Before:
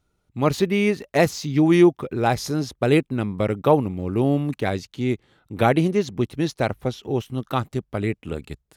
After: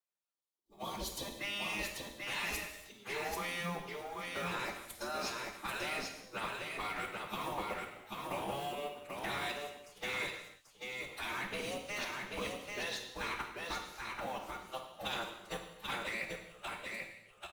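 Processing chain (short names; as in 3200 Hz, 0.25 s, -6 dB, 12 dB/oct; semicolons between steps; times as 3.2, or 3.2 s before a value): G.711 law mismatch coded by A; spectral gate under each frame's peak -15 dB weak; added harmonics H 3 -43 dB, 5 -30 dB, 6 -21 dB, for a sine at -12 dBFS; level quantiser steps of 20 dB; plain phase-vocoder stretch 2×; spectral gain 0.33–1.36, 1200–3000 Hz -12 dB; echo 0.788 s -3.5 dB; non-linear reverb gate 0.34 s falling, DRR 3.5 dB; gain +1 dB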